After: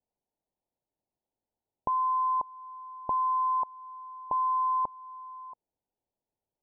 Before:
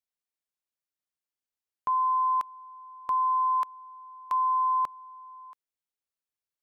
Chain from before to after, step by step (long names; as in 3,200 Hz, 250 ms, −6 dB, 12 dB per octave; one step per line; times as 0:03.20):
Butterworth low-pass 940 Hz 72 dB per octave
in parallel at +1.5 dB: downward compressor, threshold −49 dBFS, peak gain reduction 14 dB
on the sum: level +6 dB